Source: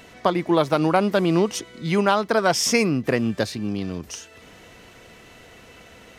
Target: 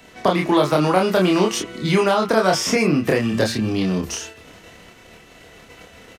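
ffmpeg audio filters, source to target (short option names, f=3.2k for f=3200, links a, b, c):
-filter_complex "[0:a]agate=range=-10dB:threshold=-45dB:ratio=16:detection=peak,acrossover=split=970|2800[a][b][c];[a]acompressor=threshold=-25dB:ratio=4[d];[b]acompressor=threshold=-29dB:ratio=4[e];[c]acompressor=threshold=-36dB:ratio=4[f];[d][e][f]amix=inputs=3:normalize=0,bandreject=f=114.3:t=h:w=4,bandreject=f=228.6:t=h:w=4,bandreject=f=342.9:t=h:w=4,bandreject=f=457.2:t=h:w=4,bandreject=f=571.5:t=h:w=4,bandreject=f=685.8:t=h:w=4,bandreject=f=800.1:t=h:w=4,bandreject=f=914.4:t=h:w=4,bandreject=f=1.0287k:t=h:w=4,bandreject=f=1.143k:t=h:w=4,bandreject=f=1.2573k:t=h:w=4,bandreject=f=1.3716k:t=h:w=4,bandreject=f=1.4859k:t=h:w=4,bandreject=f=1.6002k:t=h:w=4,bandreject=f=1.7145k:t=h:w=4,bandreject=f=1.8288k:t=h:w=4,bandreject=f=1.9431k:t=h:w=4,bandreject=f=2.0574k:t=h:w=4,bandreject=f=2.1717k:t=h:w=4,bandreject=f=2.286k:t=h:w=4,bandreject=f=2.4003k:t=h:w=4,bandreject=f=2.5146k:t=h:w=4,bandreject=f=2.6289k:t=h:w=4,bandreject=f=2.7432k:t=h:w=4,bandreject=f=2.8575k:t=h:w=4,bandreject=f=2.9718k:t=h:w=4,bandreject=f=3.0861k:t=h:w=4,bandreject=f=3.2004k:t=h:w=4,acrossover=split=150|840|6600[g][h][i][j];[i]alimiter=level_in=1dB:limit=-24dB:level=0:latency=1:release=33,volume=-1dB[k];[g][h][k][j]amix=inputs=4:normalize=0,asplit=2[l][m];[m]adelay=27,volume=-2.5dB[n];[l][n]amix=inputs=2:normalize=0,volume=8dB"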